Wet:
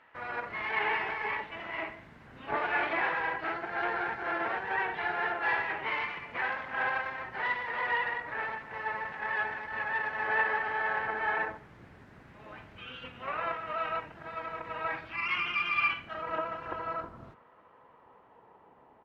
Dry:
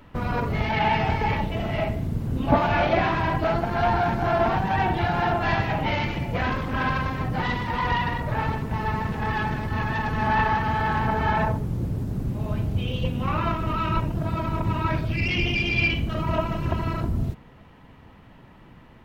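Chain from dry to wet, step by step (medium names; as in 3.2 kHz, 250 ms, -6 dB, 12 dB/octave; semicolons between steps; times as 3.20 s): band-pass sweep 1.8 kHz -> 810 Hz, 15.73–18.84 s; harmony voices -12 st -5 dB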